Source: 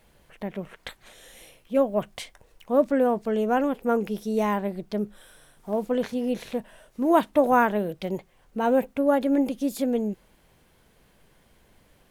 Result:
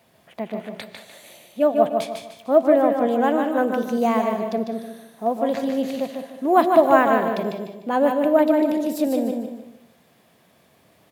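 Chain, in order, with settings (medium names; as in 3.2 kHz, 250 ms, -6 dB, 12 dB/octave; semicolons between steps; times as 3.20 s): high-pass 94 Hz 24 dB/octave; peaking EQ 620 Hz +7 dB 0.21 oct; feedback delay 163 ms, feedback 34%, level -5 dB; gated-style reverb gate 250 ms rising, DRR 11 dB; speed mistake 44.1 kHz file played as 48 kHz; trim +1.5 dB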